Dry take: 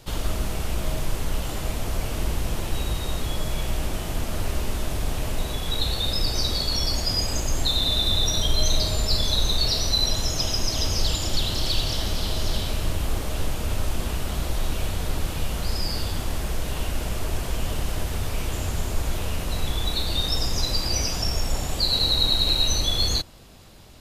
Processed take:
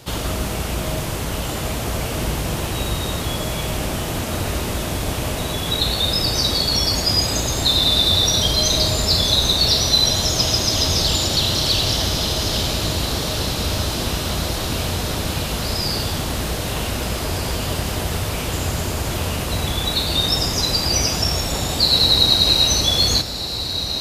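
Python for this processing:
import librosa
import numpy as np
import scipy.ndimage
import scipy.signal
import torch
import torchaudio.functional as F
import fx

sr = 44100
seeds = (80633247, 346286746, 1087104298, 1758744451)

y = scipy.signal.sosfilt(scipy.signal.butter(2, 69.0, 'highpass', fs=sr, output='sos'), x)
y = fx.echo_diffused(y, sr, ms=1671, feedback_pct=59, wet_db=-9)
y = F.gain(torch.from_numpy(y), 7.0).numpy()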